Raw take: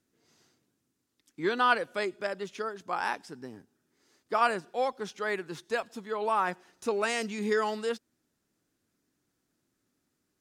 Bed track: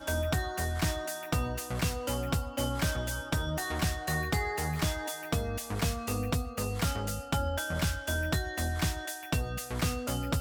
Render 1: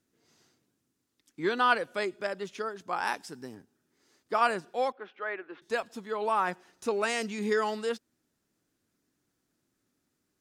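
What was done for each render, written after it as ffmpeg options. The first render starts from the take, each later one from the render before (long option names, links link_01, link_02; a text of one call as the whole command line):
ffmpeg -i in.wav -filter_complex "[0:a]asettb=1/sr,asplit=3[link_01][link_02][link_03];[link_01]atrim=end=3.074[link_04];[link_02]atrim=start=3.07:end=3.55,asetpts=PTS-STARTPTS,afade=type=in:duration=0.004:curve=qsin,afade=type=out:start_time=0.476:duration=0.004:curve=qsin,highshelf=frequency=5000:gain=8.5[link_05];[link_03]atrim=start=3.546[link_06];[link_04][link_05]acrossfade=duration=0.004:curve1=hsin:curve2=qsin[link_07];[link_07][link_06]acrossfade=duration=0.004:curve1=qsin:curve2=hsin,asettb=1/sr,asplit=3[link_08][link_09][link_10];[link_08]atrim=end=4.924[link_11];[link_09]atrim=start=4.92:end=5.62,asetpts=PTS-STARTPTS,afade=type=in:duration=0.004:curve=qsin,afade=type=out:start_time=0.696:duration=0.004:curve=qsin,highpass=frequency=320:width=0.5412,highpass=frequency=320:width=1.3066,equalizer=frequency=420:width_type=q:width=4:gain=-7,equalizer=frequency=920:width_type=q:width=4:gain=-6,equalizer=frequency=2000:width_type=q:width=4:gain=-3,lowpass=frequency=2500:width=0.5412,lowpass=frequency=2500:width=1.3066[link_12];[link_10]atrim=start=5.616[link_13];[link_11][link_12]acrossfade=duration=0.004:curve1=hsin:curve2=qsin[link_14];[link_14][link_13]acrossfade=duration=0.004:curve1=qsin:curve2=hsin" out.wav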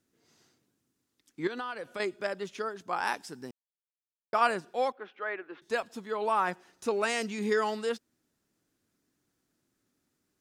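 ffmpeg -i in.wav -filter_complex "[0:a]asettb=1/sr,asplit=3[link_01][link_02][link_03];[link_01]atrim=end=1.474[link_04];[link_02]atrim=start=1.47:end=2,asetpts=PTS-STARTPTS,afade=type=in:duration=0.004:curve=qsin,afade=type=out:start_time=0.526:duration=0.004:curve=qsin,acompressor=threshold=-33dB:ratio=10:attack=3.2:release=140:knee=1:detection=peak[link_05];[link_03]atrim=start=1.996[link_06];[link_04][link_05]acrossfade=duration=0.004:curve1=hsin:curve2=qsin[link_07];[link_07][link_06]acrossfade=duration=0.004:curve1=qsin:curve2=hsin,asplit=3[link_08][link_09][link_10];[link_08]atrim=end=3.51,asetpts=PTS-STARTPTS,afade=type=out:start_time=3.506:duration=0.004:curve=hsin[link_11];[link_09]atrim=start=3.51:end=4.33,asetpts=PTS-STARTPTS,volume=0[link_12];[link_10]atrim=start=4.33,asetpts=PTS-STARTPTS,afade=type=in:duration=0.004:curve=hsin[link_13];[link_11][link_12][link_13]concat=n=3:v=0:a=1" out.wav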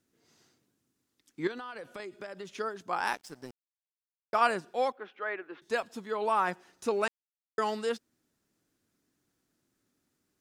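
ffmpeg -i in.wav -filter_complex "[0:a]asettb=1/sr,asplit=3[link_01][link_02][link_03];[link_01]atrim=end=1.514[link_04];[link_02]atrim=start=1.51:end=2.52,asetpts=PTS-STARTPTS,afade=type=in:duration=0.004:curve=qsin,afade=type=out:start_time=1.006:duration=0.004:curve=qsin,acompressor=threshold=-37dB:ratio=12:attack=3.2:release=140:knee=1:detection=peak[link_05];[link_03]atrim=start=2.516[link_06];[link_04][link_05]acrossfade=duration=0.004:curve1=hsin:curve2=qsin[link_07];[link_07][link_06]acrossfade=duration=0.004:curve1=qsin:curve2=hsin,asettb=1/sr,asplit=3[link_08][link_09][link_10];[link_08]atrim=end=3.064[link_11];[link_09]atrim=start=3.06:end=4.36,asetpts=PTS-STARTPTS,afade=type=in:duration=0.004:curve=qsin,afade=type=out:start_time=1.296:duration=0.004:curve=qsin,aeval=exprs='sgn(val(0))*max(abs(val(0))-0.00316,0)':channel_layout=same[link_12];[link_10]atrim=start=4.356[link_13];[link_11][link_12]acrossfade=duration=0.004:curve1=hsin:curve2=qsin[link_14];[link_14][link_13]acrossfade=duration=0.004:curve1=qsin:curve2=hsin,asplit=3[link_15][link_16][link_17];[link_15]atrim=end=7.08,asetpts=PTS-STARTPTS,afade=type=out:start_time=7.076:duration=0.004:curve=hsin[link_18];[link_16]atrim=start=7.08:end=7.58,asetpts=PTS-STARTPTS,volume=0[link_19];[link_17]atrim=start=7.58,asetpts=PTS-STARTPTS,afade=type=in:duration=0.004:curve=hsin[link_20];[link_18][link_19][link_20]concat=n=3:v=0:a=1" out.wav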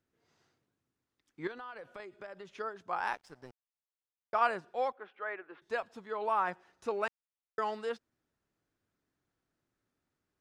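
ffmpeg -i in.wav -af "lowpass=frequency=1500:poles=1,equalizer=frequency=250:width=0.8:gain=-9" out.wav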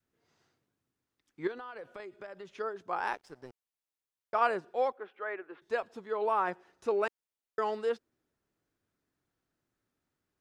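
ffmpeg -i in.wav -af "adynamicequalizer=threshold=0.00398:dfrequency=390:dqfactor=1.4:tfrequency=390:tqfactor=1.4:attack=5:release=100:ratio=0.375:range=3.5:mode=boostabove:tftype=bell" out.wav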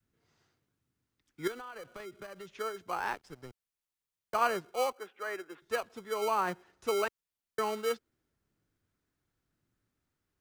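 ffmpeg -i in.wav -filter_complex "[0:a]acrossover=split=230|600|1900[link_01][link_02][link_03][link_04];[link_01]aphaser=in_gain=1:out_gain=1:delay=1.2:decay=0.6:speed=0.93:type=triangular[link_05];[link_02]acrusher=samples=25:mix=1:aa=0.000001[link_06];[link_05][link_06][link_03][link_04]amix=inputs=4:normalize=0" out.wav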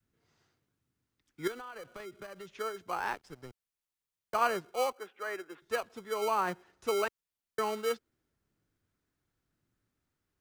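ffmpeg -i in.wav -af anull out.wav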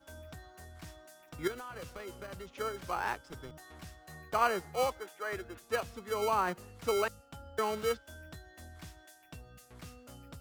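ffmpeg -i in.wav -i bed.wav -filter_complex "[1:a]volume=-19dB[link_01];[0:a][link_01]amix=inputs=2:normalize=0" out.wav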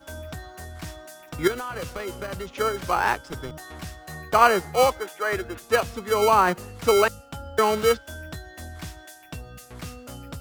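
ffmpeg -i in.wav -af "volume=12dB" out.wav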